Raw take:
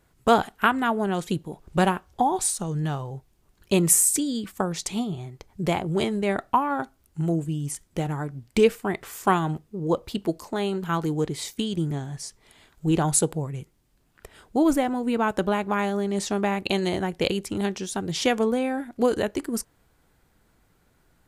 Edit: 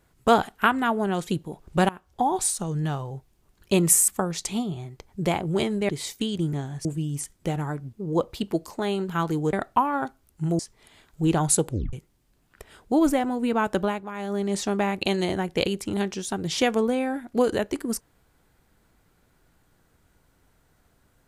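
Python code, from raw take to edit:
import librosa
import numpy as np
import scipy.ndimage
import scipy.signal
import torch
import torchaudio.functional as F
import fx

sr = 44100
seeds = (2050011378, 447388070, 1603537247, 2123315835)

y = fx.edit(x, sr, fx.fade_in_from(start_s=1.89, length_s=0.42, floor_db=-20.0),
    fx.cut(start_s=4.08, length_s=0.41),
    fx.swap(start_s=6.3, length_s=1.06, other_s=11.27, other_length_s=0.96),
    fx.cut(start_s=8.44, length_s=1.23),
    fx.tape_stop(start_s=13.32, length_s=0.25),
    fx.fade_down_up(start_s=15.46, length_s=0.58, db=-11.0, fade_s=0.25), tone=tone)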